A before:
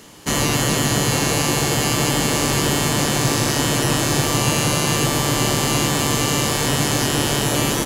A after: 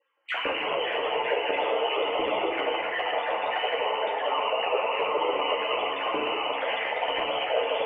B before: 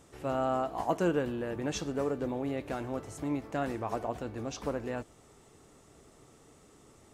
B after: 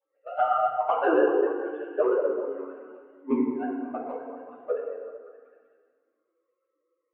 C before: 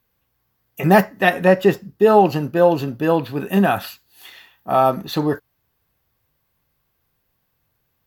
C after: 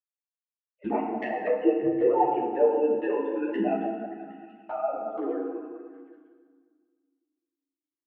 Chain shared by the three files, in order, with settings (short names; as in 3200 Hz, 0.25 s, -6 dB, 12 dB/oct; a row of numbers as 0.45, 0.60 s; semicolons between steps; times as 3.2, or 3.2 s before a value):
sine-wave speech; LPF 2100 Hz 12 dB/oct; gate -30 dBFS, range -31 dB; compressor 2:1, threshold -34 dBFS; ring modulator 63 Hz; envelope flanger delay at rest 3.7 ms, full sweep at -28.5 dBFS; on a send: delay with a stepping band-pass 0.191 s, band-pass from 510 Hz, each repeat 0.7 oct, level -7.5 dB; on the sum: FDN reverb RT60 1.7 s, low-frequency decay 1.45×, high-frequency decay 0.6×, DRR -0.5 dB; ensemble effect; match loudness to -27 LUFS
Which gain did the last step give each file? +8.0, +20.5, +6.5 dB